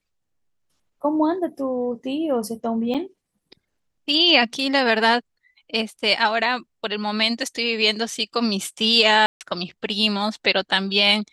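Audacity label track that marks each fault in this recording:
2.940000	2.950000	drop-out 6.8 ms
9.260000	9.410000	drop-out 148 ms

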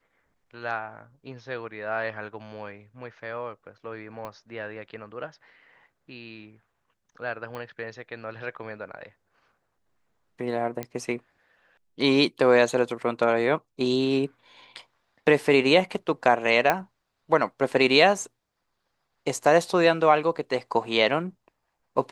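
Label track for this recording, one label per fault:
4.250000	4.250000	click −23 dBFS
7.550000	7.550000	click −24 dBFS
10.830000	10.830000	click −17 dBFS
16.700000	16.700000	click −8 dBFS

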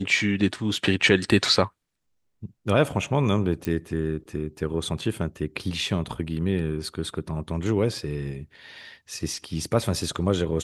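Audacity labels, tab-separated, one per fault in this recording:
3.650000	3.650000	click −15 dBFS

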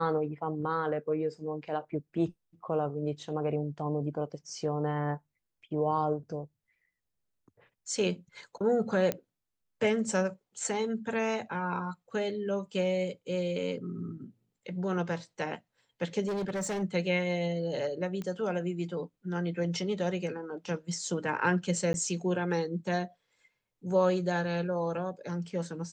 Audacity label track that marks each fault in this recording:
9.120000	9.120000	click −15 dBFS
16.270000	16.830000	clipping −29.5 dBFS
18.220000	18.220000	click −25 dBFS
21.930000	21.940000	drop-out

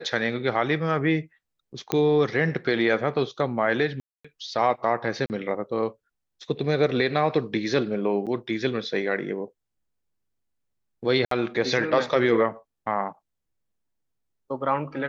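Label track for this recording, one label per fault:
1.920000	1.920000	click −8 dBFS
4.000000	4.250000	drop-out 245 ms
5.260000	5.300000	drop-out 39 ms
8.260000	8.270000	drop-out 7.8 ms
11.250000	11.310000	drop-out 63 ms

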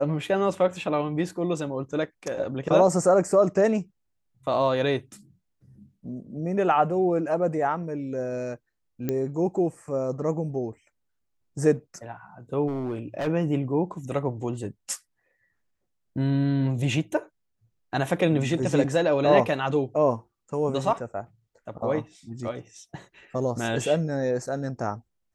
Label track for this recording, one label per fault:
9.090000	9.090000	click −14 dBFS
12.680000	13.280000	clipping −25 dBFS

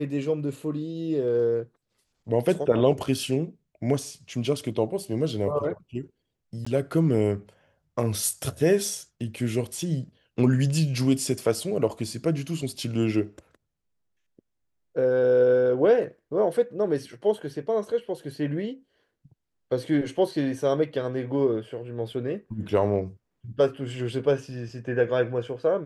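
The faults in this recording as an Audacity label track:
6.650000	6.670000	drop-out 15 ms

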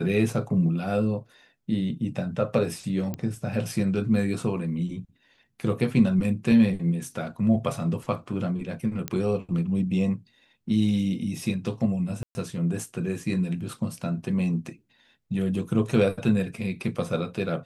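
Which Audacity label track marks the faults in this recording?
3.140000	3.140000	click −17 dBFS
9.080000	9.080000	click −13 dBFS
12.230000	12.350000	drop-out 120 ms

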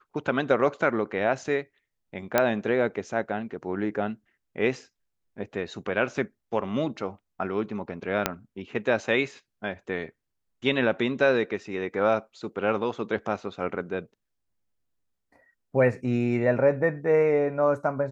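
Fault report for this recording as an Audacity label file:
2.380000	2.380000	click −6 dBFS
8.260000	8.260000	click −6 dBFS

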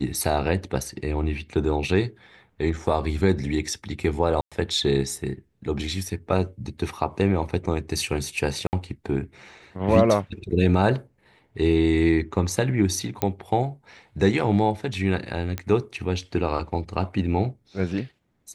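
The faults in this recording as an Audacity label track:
4.410000	4.520000	drop-out 106 ms
8.670000	8.730000	drop-out 59 ms
13.220000	13.220000	click −9 dBFS
15.580000	15.580000	click −14 dBFS

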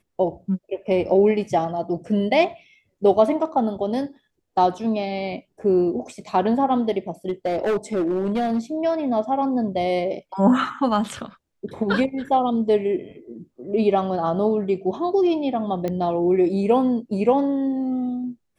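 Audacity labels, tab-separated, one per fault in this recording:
7.280000	8.590000	clipping −18 dBFS
15.880000	15.880000	click −15 dBFS

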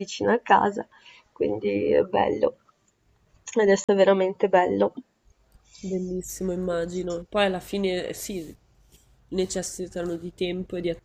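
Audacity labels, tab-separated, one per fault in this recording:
3.840000	3.890000	drop-out 46 ms

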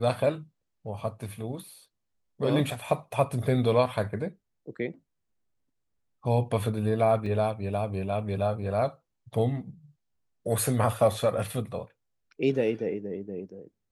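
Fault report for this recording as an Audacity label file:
7.260000	7.260000	drop-out 3.4 ms

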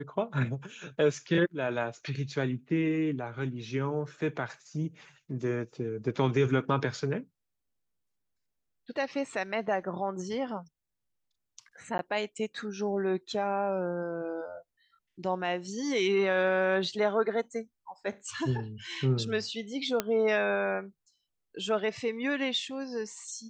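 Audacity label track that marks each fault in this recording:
11.980000	11.990000	drop-out
20.000000	20.000000	click −12 dBFS

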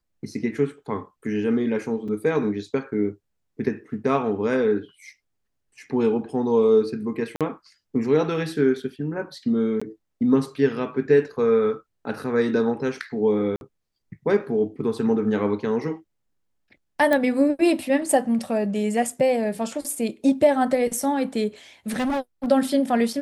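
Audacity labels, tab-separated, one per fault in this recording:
2.080000	2.080000	drop-out 4.9 ms
7.360000	7.410000	drop-out 47 ms
9.800000	9.810000	drop-out 15 ms
13.560000	13.610000	drop-out 51 ms
17.130000	17.130000	click −10 dBFS
21.910000	22.460000	clipping −21.5 dBFS

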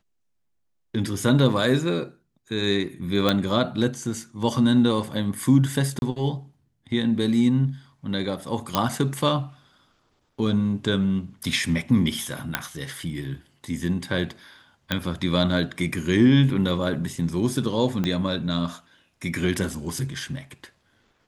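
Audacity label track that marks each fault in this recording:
3.290000	3.290000	click −7 dBFS
5.990000	6.020000	drop-out 31 ms
8.750000	8.750000	click −5 dBFS
12.550000	12.550000	click −6 dBFS
14.920000	14.920000	click −10 dBFS
18.040000	18.040000	click −13 dBFS

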